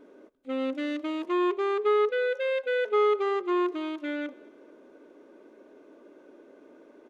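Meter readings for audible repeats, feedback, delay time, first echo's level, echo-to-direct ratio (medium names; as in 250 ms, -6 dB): 2, 35%, 224 ms, -24.0 dB, -23.5 dB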